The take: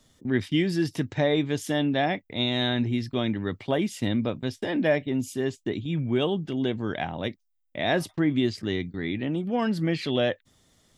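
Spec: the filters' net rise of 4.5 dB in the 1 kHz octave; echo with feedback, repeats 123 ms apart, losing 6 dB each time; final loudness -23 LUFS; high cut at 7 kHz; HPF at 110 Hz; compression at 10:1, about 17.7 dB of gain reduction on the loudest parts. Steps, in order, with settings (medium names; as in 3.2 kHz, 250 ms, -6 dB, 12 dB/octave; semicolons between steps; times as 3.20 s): high-pass 110 Hz; low-pass 7 kHz; peaking EQ 1 kHz +7 dB; compression 10:1, threshold -35 dBFS; feedback delay 123 ms, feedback 50%, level -6 dB; trim +15.5 dB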